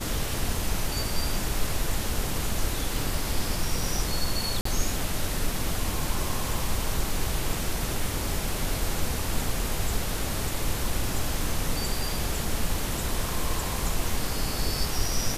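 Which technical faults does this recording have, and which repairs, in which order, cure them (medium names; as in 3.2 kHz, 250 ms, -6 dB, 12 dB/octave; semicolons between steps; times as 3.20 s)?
4.61–4.65 s: dropout 44 ms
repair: interpolate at 4.61 s, 44 ms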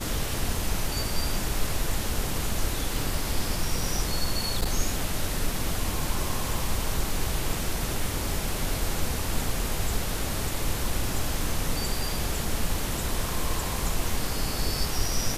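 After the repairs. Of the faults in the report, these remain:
nothing left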